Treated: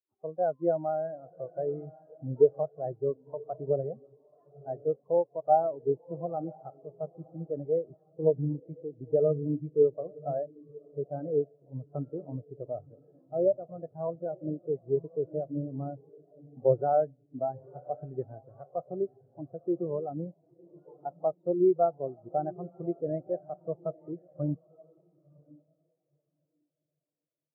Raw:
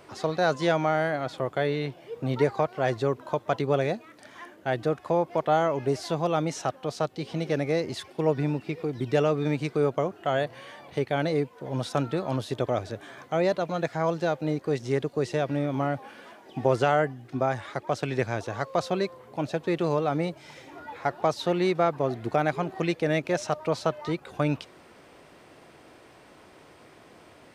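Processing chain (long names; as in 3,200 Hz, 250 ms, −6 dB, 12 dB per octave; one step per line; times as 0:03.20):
low-pass filter 1,500 Hz 12 dB per octave
feedback delay with all-pass diffusion 995 ms, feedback 45%, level −8 dB
every bin expanded away from the loudest bin 2.5 to 1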